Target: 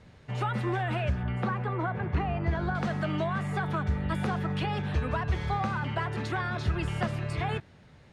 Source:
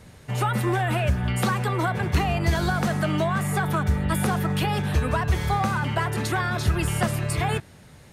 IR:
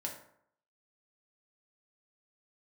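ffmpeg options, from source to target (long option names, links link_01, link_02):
-af "asetnsamples=nb_out_samples=441:pad=0,asendcmd='1.23 lowpass f 1900;2.75 lowpass f 4200',lowpass=4400,volume=-6dB"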